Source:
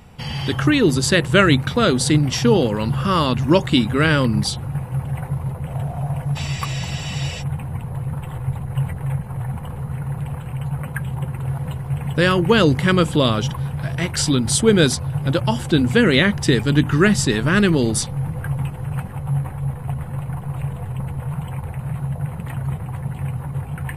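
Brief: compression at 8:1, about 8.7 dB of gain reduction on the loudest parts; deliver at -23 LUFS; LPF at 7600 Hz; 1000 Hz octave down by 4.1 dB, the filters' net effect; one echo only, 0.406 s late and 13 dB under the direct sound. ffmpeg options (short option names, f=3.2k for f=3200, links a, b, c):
-af "lowpass=7.6k,equalizer=f=1k:t=o:g=-5.5,acompressor=threshold=-19dB:ratio=8,aecho=1:1:406:0.224,volume=2dB"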